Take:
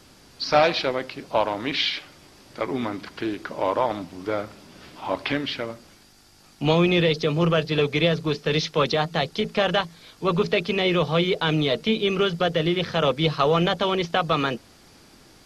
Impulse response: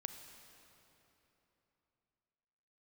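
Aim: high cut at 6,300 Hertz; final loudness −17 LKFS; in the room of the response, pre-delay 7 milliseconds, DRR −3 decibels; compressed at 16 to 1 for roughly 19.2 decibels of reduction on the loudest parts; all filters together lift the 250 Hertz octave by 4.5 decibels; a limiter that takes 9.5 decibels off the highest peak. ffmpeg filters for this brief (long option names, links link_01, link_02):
-filter_complex "[0:a]lowpass=6300,equalizer=frequency=250:width_type=o:gain=7,acompressor=threshold=-32dB:ratio=16,alimiter=level_in=3dB:limit=-24dB:level=0:latency=1,volume=-3dB,asplit=2[link_01][link_02];[1:a]atrim=start_sample=2205,adelay=7[link_03];[link_02][link_03]afir=irnorm=-1:irlink=0,volume=5.5dB[link_04];[link_01][link_04]amix=inputs=2:normalize=0,volume=16.5dB"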